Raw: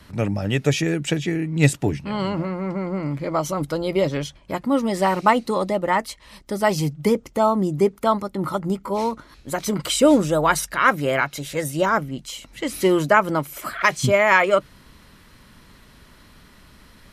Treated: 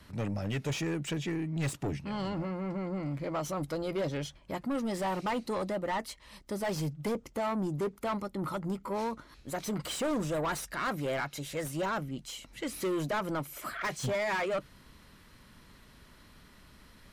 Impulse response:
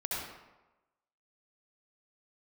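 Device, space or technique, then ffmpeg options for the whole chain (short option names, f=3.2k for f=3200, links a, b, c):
saturation between pre-emphasis and de-emphasis: -af "highshelf=f=4.2k:g=11.5,asoftclip=type=tanh:threshold=-20.5dB,highshelf=f=4.2k:g=-11.5,volume=-7dB"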